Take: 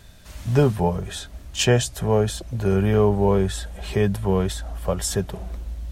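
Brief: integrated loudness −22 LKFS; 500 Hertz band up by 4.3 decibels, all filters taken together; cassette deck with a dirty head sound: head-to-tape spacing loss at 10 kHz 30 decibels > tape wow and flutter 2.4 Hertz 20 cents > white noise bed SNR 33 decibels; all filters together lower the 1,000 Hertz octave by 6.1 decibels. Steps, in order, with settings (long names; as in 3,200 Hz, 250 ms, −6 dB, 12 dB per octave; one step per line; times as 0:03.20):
head-to-tape spacing loss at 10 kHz 30 dB
parametric band 500 Hz +8.5 dB
parametric band 1,000 Hz −8.5 dB
tape wow and flutter 2.4 Hz 20 cents
white noise bed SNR 33 dB
level −1.5 dB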